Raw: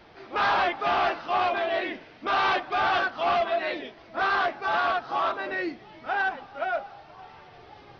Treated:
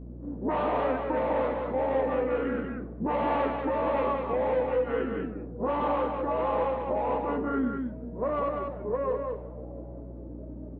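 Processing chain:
Chebyshev high-pass filter 340 Hz, order 2
low-pass that shuts in the quiet parts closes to 380 Hz, open at −21 dBFS
spectral tilt −3.5 dB per octave
downward compressor 3 to 1, threshold −37 dBFS, peak gain reduction 12.5 dB
wrong playback speed 45 rpm record played at 33 rpm
single-tap delay 193 ms −4.5 dB
mains hum 60 Hz, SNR 13 dB
level +7 dB

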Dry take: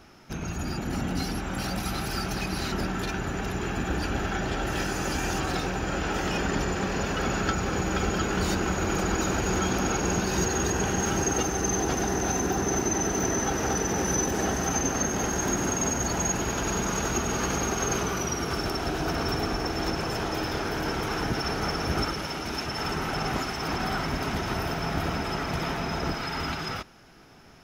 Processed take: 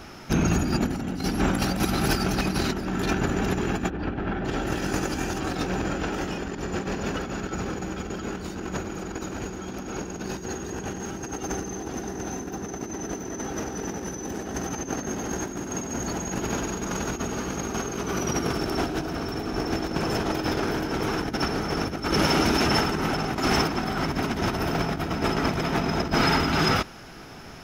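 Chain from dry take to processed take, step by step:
dynamic equaliser 270 Hz, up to +6 dB, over −40 dBFS, Q 0.82
compressor whose output falls as the input rises −30 dBFS, ratio −0.5
0:03.90–0:04.45: high-frequency loss of the air 340 metres
level +4 dB

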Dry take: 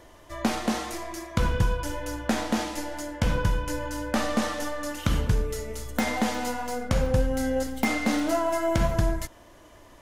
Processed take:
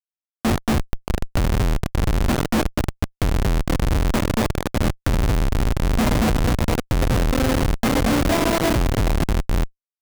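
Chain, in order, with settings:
running median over 3 samples
high-shelf EQ 3,700 Hz +4 dB
feedback delay with all-pass diffusion 554 ms, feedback 49%, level −6 dB
comparator with hysteresis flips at −22.5 dBFS
level +8 dB

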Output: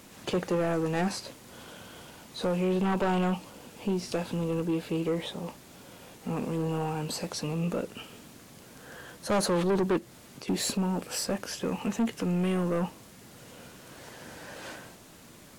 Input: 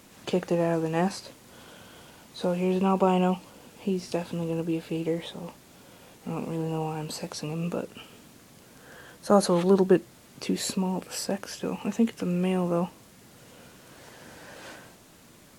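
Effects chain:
0:09.98–0:10.48: downward compressor 10 to 1, threshold −43 dBFS, peak gain reduction 10 dB
soft clipping −24 dBFS, distortion −7 dB
level +2 dB

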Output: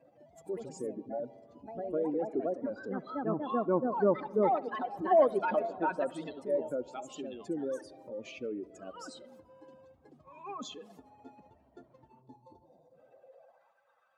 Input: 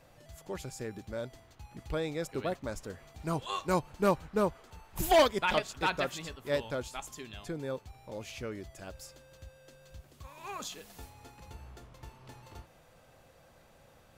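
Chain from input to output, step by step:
expanding power law on the bin magnitudes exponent 2.1
treble cut that deepens with the level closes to 1,600 Hz, closed at −31 dBFS
gain on a spectral selection 0:12.22–0:12.94, 1,100–3,400 Hz −15 dB
delay with pitch and tempo change per echo 155 ms, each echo +3 semitones, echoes 2, each echo −6 dB
feedback echo with a low-pass in the loop 69 ms, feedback 85%, low-pass 2,400 Hz, level −22 dB
high-pass filter sweep 270 Hz → 1,200 Hz, 0:12.96–0:13.77
level −1.5 dB

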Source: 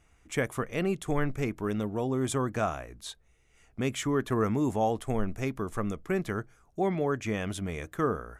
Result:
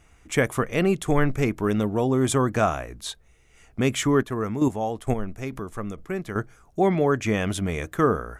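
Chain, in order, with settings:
0:04.16–0:06.36: square-wave tremolo 2.2 Hz, depth 60%, duty 15%
level +7.5 dB

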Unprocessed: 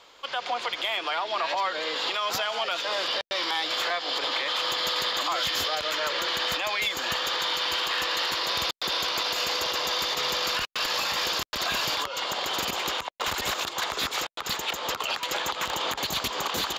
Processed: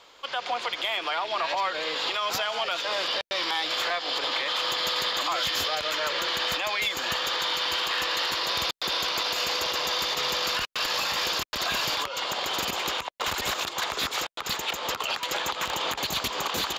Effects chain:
loose part that buzzes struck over −49 dBFS, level −30 dBFS

